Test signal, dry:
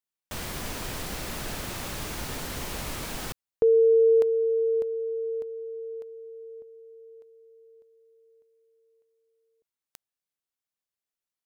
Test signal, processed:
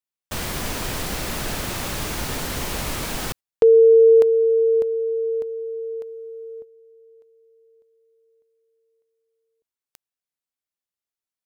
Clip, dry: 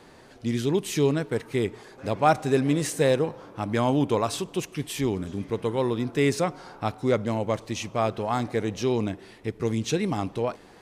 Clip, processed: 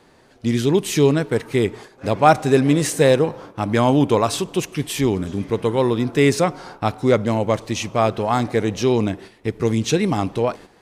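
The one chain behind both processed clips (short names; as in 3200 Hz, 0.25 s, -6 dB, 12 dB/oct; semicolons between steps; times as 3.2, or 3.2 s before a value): gate -44 dBFS, range -9 dB; gain +7 dB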